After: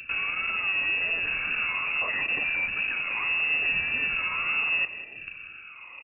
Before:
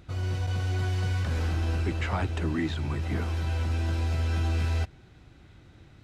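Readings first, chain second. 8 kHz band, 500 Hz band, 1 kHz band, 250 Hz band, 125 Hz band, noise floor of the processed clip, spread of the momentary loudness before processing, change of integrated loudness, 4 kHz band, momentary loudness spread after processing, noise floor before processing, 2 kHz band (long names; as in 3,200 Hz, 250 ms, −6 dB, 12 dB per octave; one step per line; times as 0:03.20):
can't be measured, −7.5 dB, +1.5 dB, −14.5 dB, −26.5 dB, −45 dBFS, 3 LU, +4.0 dB, +8.5 dB, 15 LU, −54 dBFS, +15.5 dB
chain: rippled gain that drifts along the octave scale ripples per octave 0.67, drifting +0.75 Hz, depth 18 dB
low-shelf EQ 100 Hz −4 dB
notch filter 1,900 Hz, Q 8.9
reversed playback
downward compressor 6 to 1, threshold −34 dBFS, peak gain reduction 13.5 dB
reversed playback
brickwall limiter −32.5 dBFS, peak gain reduction 8 dB
in parallel at −9.5 dB: log-companded quantiser 2 bits
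on the sum: tape wow and flutter 140 cents
soft clipping −30 dBFS, distortion −20 dB
single-tap delay 190 ms −12.5 dB
voice inversion scrambler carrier 2,700 Hz
level +7.5 dB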